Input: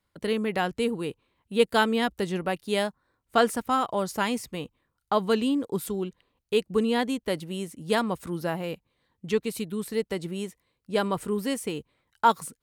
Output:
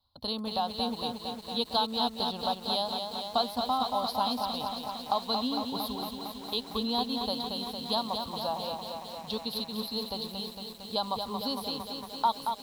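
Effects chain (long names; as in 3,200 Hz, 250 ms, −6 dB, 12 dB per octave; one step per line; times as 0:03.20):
drawn EQ curve 110 Hz 0 dB, 170 Hz −16 dB, 250 Hz −3 dB, 350 Hz −20 dB, 790 Hz +4 dB, 1,100 Hz −1 dB, 2,000 Hz −29 dB, 4,100 Hz +13 dB, 7,500 Hz −29 dB, 11,000 Hz −4 dB
downward compressor 2 to 1, threshold −31 dBFS, peak gain reduction 9.5 dB
feedback echo at a low word length 228 ms, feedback 80%, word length 9 bits, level −5.5 dB
level +1.5 dB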